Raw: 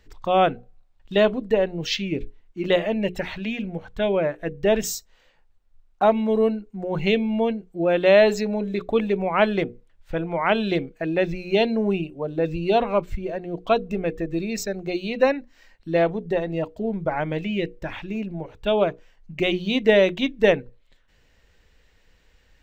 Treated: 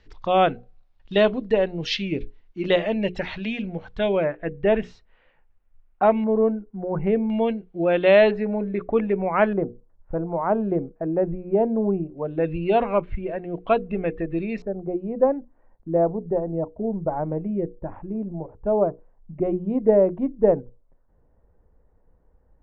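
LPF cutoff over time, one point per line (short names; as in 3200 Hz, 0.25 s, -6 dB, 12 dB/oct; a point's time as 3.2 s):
LPF 24 dB/oct
5400 Hz
from 4.24 s 2600 Hz
from 6.24 s 1500 Hz
from 7.3 s 3500 Hz
from 8.31 s 2100 Hz
from 9.53 s 1100 Hz
from 12.18 s 2700 Hz
from 14.62 s 1000 Hz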